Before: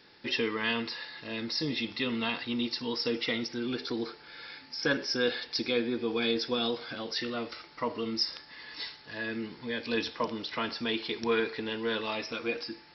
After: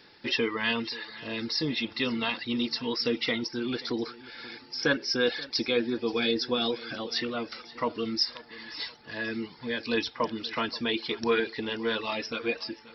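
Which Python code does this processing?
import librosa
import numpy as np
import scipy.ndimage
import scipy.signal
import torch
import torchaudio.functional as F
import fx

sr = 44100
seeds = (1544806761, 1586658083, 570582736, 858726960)

y = fx.dereverb_blind(x, sr, rt60_s=0.54)
y = fx.echo_feedback(y, sr, ms=531, feedback_pct=39, wet_db=-19)
y = F.gain(torch.from_numpy(y), 3.0).numpy()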